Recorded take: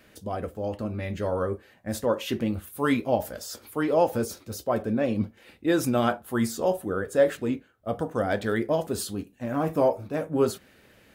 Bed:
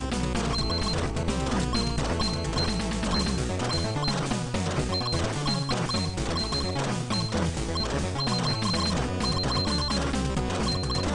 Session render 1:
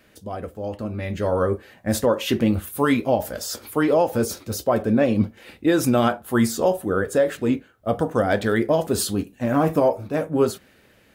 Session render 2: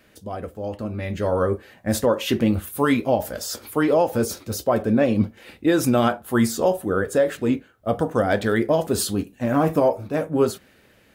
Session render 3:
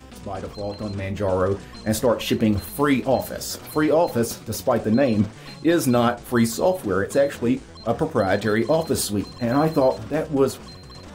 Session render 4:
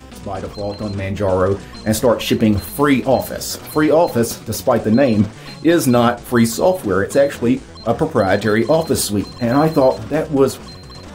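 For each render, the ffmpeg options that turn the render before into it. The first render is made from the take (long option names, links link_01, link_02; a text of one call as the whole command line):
ffmpeg -i in.wav -af "dynaudnorm=framelen=210:gausssize=13:maxgain=11.5dB,alimiter=limit=-9dB:level=0:latency=1:release=299" out.wav
ffmpeg -i in.wav -af anull out.wav
ffmpeg -i in.wav -i bed.wav -filter_complex "[1:a]volume=-13.5dB[link_01];[0:a][link_01]amix=inputs=2:normalize=0" out.wav
ffmpeg -i in.wav -af "volume=5.5dB" out.wav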